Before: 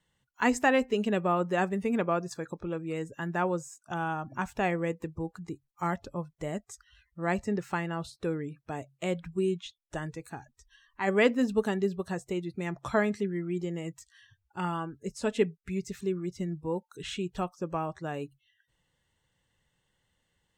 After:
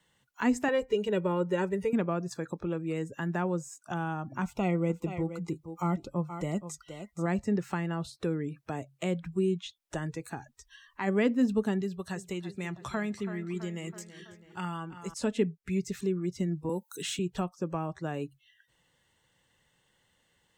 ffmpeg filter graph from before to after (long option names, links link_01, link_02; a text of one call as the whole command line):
ffmpeg -i in.wav -filter_complex "[0:a]asettb=1/sr,asplit=3[link_01][link_02][link_03];[link_01]atrim=end=0.684[link_04];[link_02]atrim=start=0.68:end=1.93,asetpts=PTS-STARTPTS,afade=type=in:duration=0.004:curve=qsin,afade=type=out:start_time=1.246:duration=0.004:curve=qsin,aecho=1:1:2.1:0.92,atrim=end_sample=55125,acompressor=mode=upward:threshold=-36dB:ratio=2.5:attack=3.2:release=140:knee=2.83:detection=peak[link_05];[link_03]atrim=start=1.926[link_06];[link_04][link_05]acrossfade=duration=0.004:curve1=hsin:curve2=qsin[link_07];[link_07][link_06]acrossfade=duration=0.004:curve1=qsin:curve2=hsin,asettb=1/sr,asplit=3[link_08][link_09][link_10];[link_08]atrim=end=4.424[link_11];[link_09]atrim=start=4.42:end=7.26,asetpts=PTS-STARTPTS,afade=type=in:duration=0.004:curve=qsin,afade=type=out:start_time=2.836:duration=0.004:curve=qsin,asuperstop=centerf=1700:order=20:qfactor=4.3,aecho=1:1:5.8:0.32,atrim=end_sample=125244,aecho=1:1:472:0.211,atrim=end_sample=125244[link_12];[link_10]atrim=start=7.256[link_13];[link_11][link_12]acrossfade=duration=0.004:curve1=hsin:curve2=qsin[link_14];[link_14][link_13]acrossfade=duration=0.004:curve1=qsin:curve2=hsin,asettb=1/sr,asplit=3[link_15][link_16][link_17];[link_15]atrim=end=11.814[link_18];[link_16]atrim=start=11.81:end=15.14,asetpts=PTS-STARTPTS,afade=type=in:duration=0.004:curve=qsin,afade=type=out:start_time=3.326:duration=0.004:curve=qsin,equalizer=frequency=410:width=0.4:gain=-8,asplit=2[link_19][link_20];[link_20]adelay=328,lowpass=frequency=4000:poles=1,volume=-15dB,asplit=2[link_21][link_22];[link_22]adelay=328,lowpass=frequency=4000:poles=1,volume=0.52,asplit=2[link_23][link_24];[link_24]adelay=328,lowpass=frequency=4000:poles=1,volume=0.52,asplit=2[link_25][link_26];[link_26]adelay=328,lowpass=frequency=4000:poles=1,volume=0.52,asplit=2[link_27][link_28];[link_28]adelay=328,lowpass=frequency=4000:poles=1,volume=0.52[link_29];[link_19][link_21][link_23][link_25][link_27][link_29]amix=inputs=6:normalize=0,atrim=end_sample=146853[link_30];[link_17]atrim=start=15.136[link_31];[link_18][link_30]acrossfade=duration=0.004:curve1=hsin:curve2=qsin[link_32];[link_32][link_31]acrossfade=duration=0.004:curve1=qsin:curve2=hsin,asettb=1/sr,asplit=3[link_33][link_34][link_35];[link_33]atrim=end=16.694[link_36];[link_34]atrim=start=16.69:end=17.19,asetpts=PTS-STARTPTS,afade=type=in:duration=0.004:curve=qsin,afade=type=out:start_time=0.496:duration=0.004:curve=qsin,highpass=frequency=150:width=0.5412,highpass=frequency=150:width=1.3066,aemphasis=mode=production:type=75fm[link_37];[link_35]atrim=start=17.186[link_38];[link_36][link_37]acrossfade=duration=0.004:curve1=hsin:curve2=qsin[link_39];[link_39][link_38]acrossfade=duration=0.004:curve1=qsin:curve2=hsin,lowshelf=frequency=110:gain=-10.5,acrossover=split=280[link_40][link_41];[link_41]acompressor=threshold=-47dB:ratio=2[link_42];[link_40][link_42]amix=inputs=2:normalize=0,volume=6.5dB" out.wav